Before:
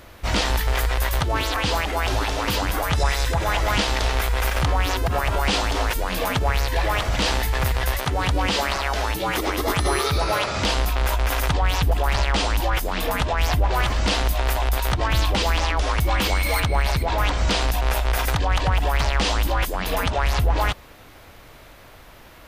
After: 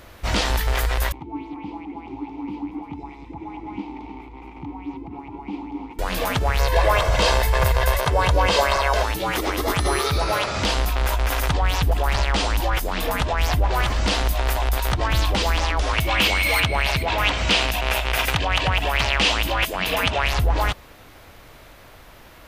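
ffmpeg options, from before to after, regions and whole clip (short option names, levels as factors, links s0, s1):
-filter_complex "[0:a]asettb=1/sr,asplit=3[s0][s1][s2];[s0]atrim=end=1.124[s3];[s1]atrim=start=1.12:end=5.99,asetpts=PTS-STARTPTS,afade=t=in:d=0.004:c=qsin,afade=t=out:st=4.866:d=0.004:c=qsin,asplit=3[s4][s5][s6];[s4]bandpass=f=300:t=q:w=8,volume=1[s7];[s5]bandpass=f=870:t=q:w=8,volume=0.501[s8];[s6]bandpass=f=2240:t=q:w=8,volume=0.355[s9];[s7][s8][s9]amix=inputs=3:normalize=0,tiltshelf=f=780:g=8,aecho=1:1:307:0.251,atrim=end_sample=214767[s10];[s2]atrim=start=5.986[s11];[s3][s10]acrossfade=d=0.004:c1=hsin:c2=qsin[s12];[s12][s11]acrossfade=d=0.004:c1=qsin:c2=hsin,asettb=1/sr,asplit=3[s13][s14][s15];[s13]atrim=end=6.594[s16];[s14]atrim=start=6.59:end=9.03,asetpts=PTS-STARTPTS,afade=t=in:d=0.004:c=qsin,afade=t=out:st=2.436:d=0.004:c=qsin,equalizer=f=740:w=0.96:g=6.5,aecho=1:1:1.9:0.51,atrim=end_sample=107604[s17];[s15]atrim=start=9.026[s18];[s16][s17]acrossfade=d=0.004:c1=hsin:c2=qsin[s19];[s19][s18]acrossfade=d=0.004:c1=qsin:c2=hsin,asettb=1/sr,asplit=3[s20][s21][s22];[s20]atrim=end=15.934[s23];[s21]atrim=start=15.93:end=20.34,asetpts=PTS-STARTPTS,afade=t=in:d=0.004:c=qsin,afade=t=out:st=4.406:d=0.004:c=qsin,equalizer=f=2700:t=o:w=0.85:g=9.5,aeval=exprs='val(0)+0.01*sin(2*PI*650*n/s)':c=same,highpass=65[s24];[s22]atrim=start=20.336[s25];[s23][s24]acrossfade=d=0.004:c1=hsin:c2=qsin[s26];[s26][s25]acrossfade=d=0.004:c1=qsin:c2=hsin"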